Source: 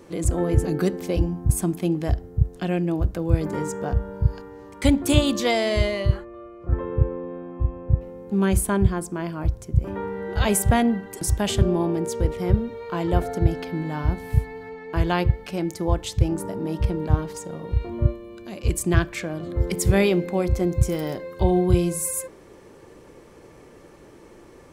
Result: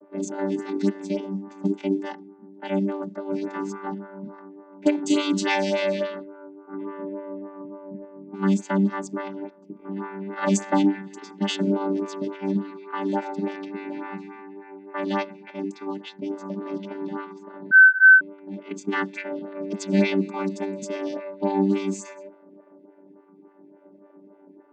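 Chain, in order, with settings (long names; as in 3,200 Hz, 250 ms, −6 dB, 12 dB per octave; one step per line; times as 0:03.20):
channel vocoder with a chord as carrier bare fifth, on G3
low-pass that shuts in the quiet parts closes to 650 Hz, open at −21.5 dBFS
tilt shelving filter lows −9 dB, about 1,200 Hz
0:15.22–0:16.50: downward compressor 2 to 1, threshold −35 dBFS, peak gain reduction 4.5 dB
0:17.71–0:18.21: beep over 1,530 Hz −15 dBFS
phaser with staggered stages 3.5 Hz
level +8.5 dB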